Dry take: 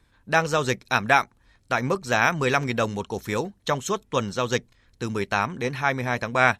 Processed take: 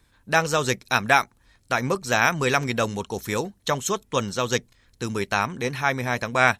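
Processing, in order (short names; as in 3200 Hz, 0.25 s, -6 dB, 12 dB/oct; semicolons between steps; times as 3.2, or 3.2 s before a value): high shelf 5600 Hz +8.5 dB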